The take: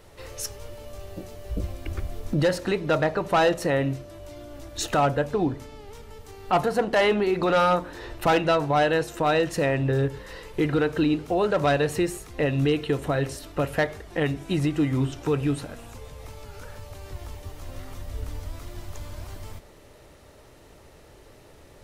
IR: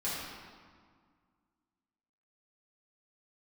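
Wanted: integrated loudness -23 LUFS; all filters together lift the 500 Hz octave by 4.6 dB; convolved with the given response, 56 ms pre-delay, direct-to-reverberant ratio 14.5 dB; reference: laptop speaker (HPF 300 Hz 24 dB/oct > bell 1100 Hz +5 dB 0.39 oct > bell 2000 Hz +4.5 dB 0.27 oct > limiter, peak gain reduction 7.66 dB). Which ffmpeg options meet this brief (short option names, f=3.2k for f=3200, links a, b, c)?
-filter_complex "[0:a]equalizer=f=500:t=o:g=5.5,asplit=2[a][b];[1:a]atrim=start_sample=2205,adelay=56[c];[b][c]afir=irnorm=-1:irlink=0,volume=-20.5dB[d];[a][d]amix=inputs=2:normalize=0,highpass=f=300:w=0.5412,highpass=f=300:w=1.3066,equalizer=f=1.1k:t=o:w=0.39:g=5,equalizer=f=2k:t=o:w=0.27:g=4.5,volume=1.5dB,alimiter=limit=-11.5dB:level=0:latency=1"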